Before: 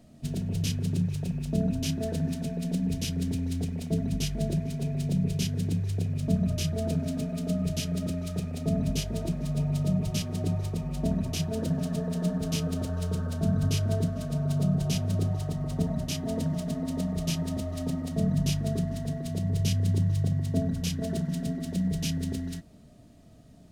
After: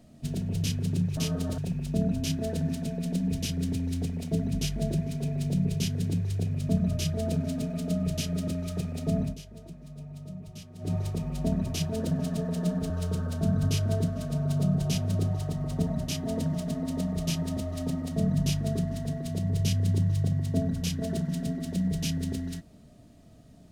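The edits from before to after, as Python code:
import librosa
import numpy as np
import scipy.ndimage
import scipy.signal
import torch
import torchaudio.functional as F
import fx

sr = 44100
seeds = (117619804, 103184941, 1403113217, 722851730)

y = fx.edit(x, sr, fx.fade_down_up(start_s=8.8, length_s=1.73, db=-14.5, fade_s=0.16),
    fx.move(start_s=12.49, length_s=0.41, to_s=1.17), tone=tone)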